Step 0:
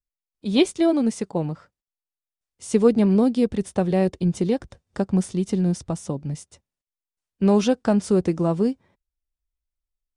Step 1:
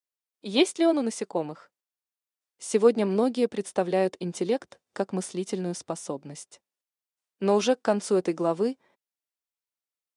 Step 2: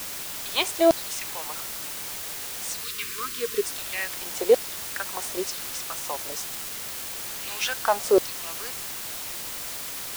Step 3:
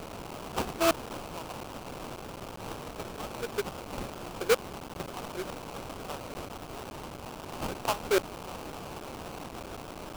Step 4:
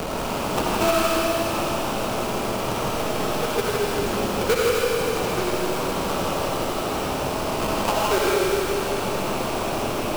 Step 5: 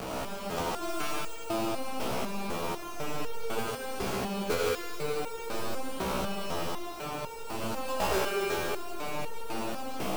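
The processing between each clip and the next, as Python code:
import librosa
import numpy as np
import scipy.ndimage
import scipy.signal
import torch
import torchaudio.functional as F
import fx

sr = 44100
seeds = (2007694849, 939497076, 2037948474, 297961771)

y1 = scipy.signal.sosfilt(scipy.signal.butter(2, 360.0, 'highpass', fs=sr, output='sos'), x)
y2 = fx.filter_lfo_highpass(y1, sr, shape='saw_down', hz=1.1, low_hz=430.0, high_hz=5500.0, q=2.8)
y2 = fx.quant_dither(y2, sr, seeds[0], bits=6, dither='triangular')
y2 = fx.spec_box(y2, sr, start_s=2.84, length_s=0.79, low_hz=480.0, high_hz=1000.0, gain_db=-26)
y2 = F.gain(torch.from_numpy(y2), 1.5).numpy()
y3 = fx.sample_hold(y2, sr, seeds[1], rate_hz=1900.0, jitter_pct=20)
y3 = F.gain(torch.from_numpy(y3), -7.0).numpy()
y4 = y3 + 10.0 ** (-4.5 / 20.0) * np.pad(y3, (int(161 * sr / 1000.0), 0))[:len(y3)]
y4 = fx.rev_freeverb(y4, sr, rt60_s=2.4, hf_ratio=1.0, predelay_ms=20, drr_db=-5.5)
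y4 = fx.band_squash(y4, sr, depth_pct=70)
y4 = F.gain(torch.from_numpy(y4), 4.0).numpy()
y5 = y4 + 10.0 ** (-6.0 / 20.0) * np.pad(y4, (int(140 * sr / 1000.0), 0))[:len(y4)]
y5 = fx.resonator_held(y5, sr, hz=4.0, low_hz=64.0, high_hz=460.0)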